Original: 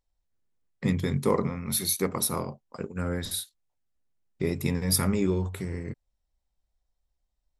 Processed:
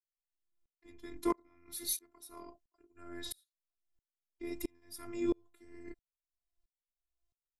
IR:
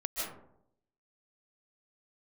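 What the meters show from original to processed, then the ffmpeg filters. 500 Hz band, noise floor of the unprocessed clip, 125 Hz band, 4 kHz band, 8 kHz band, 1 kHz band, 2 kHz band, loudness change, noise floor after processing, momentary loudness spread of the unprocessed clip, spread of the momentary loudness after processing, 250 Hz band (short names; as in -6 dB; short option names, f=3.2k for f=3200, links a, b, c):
-12.0 dB, -80 dBFS, -30.0 dB, -13.0 dB, -13.0 dB, -10.0 dB, -15.0 dB, -11.0 dB, under -85 dBFS, 13 LU, 18 LU, -11.0 dB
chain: -af "afftfilt=real='hypot(re,im)*cos(PI*b)':imag='0':win_size=512:overlap=0.75,aeval=exprs='val(0)*pow(10,-36*if(lt(mod(-1.5*n/s,1),2*abs(-1.5)/1000),1-mod(-1.5*n/s,1)/(2*abs(-1.5)/1000),(mod(-1.5*n/s,1)-2*abs(-1.5)/1000)/(1-2*abs(-1.5)/1000))/20)':c=same"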